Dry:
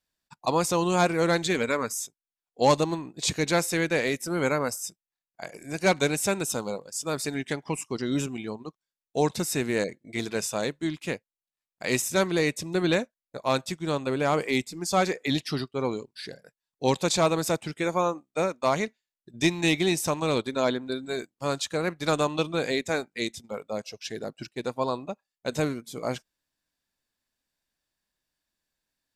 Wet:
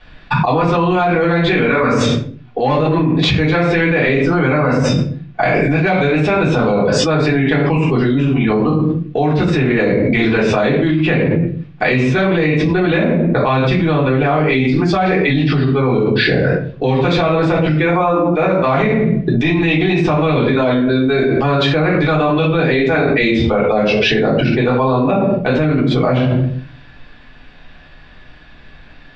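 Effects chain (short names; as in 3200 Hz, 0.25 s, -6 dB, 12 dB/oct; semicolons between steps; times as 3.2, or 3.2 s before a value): LPF 3200 Hz 24 dB/oct; reverb RT60 0.45 s, pre-delay 3 ms, DRR -8 dB; fast leveller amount 100%; gain -5.5 dB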